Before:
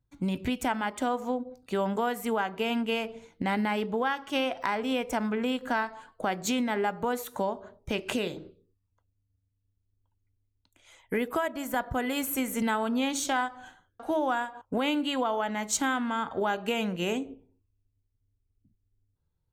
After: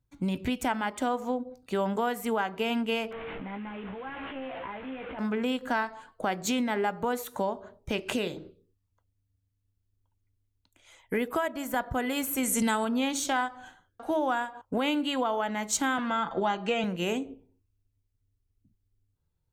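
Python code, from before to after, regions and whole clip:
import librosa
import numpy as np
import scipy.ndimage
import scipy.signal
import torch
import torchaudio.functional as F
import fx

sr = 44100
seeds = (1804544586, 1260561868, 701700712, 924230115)

y = fx.chain(x, sr, fx.delta_mod(bps=16000, step_db=-30.0),
    fx.level_steps(step_db=20),
    fx.doubler(ms=15.0, db=-4.5), at=(3.11, 5.19))
y = fx.chain(y, sr, fx.lowpass(hz=11000.0, slope=24),
    fx.bass_treble(bass_db=3, treble_db=12), at=(12.43, 12.85))
y = fx.chain(y, sr, fx.lowpass(hz=6900.0, slope=24),
    fx.comb(ms=5.9, depth=0.6),
    fx.band_squash(depth_pct=40), at=(15.98, 16.84))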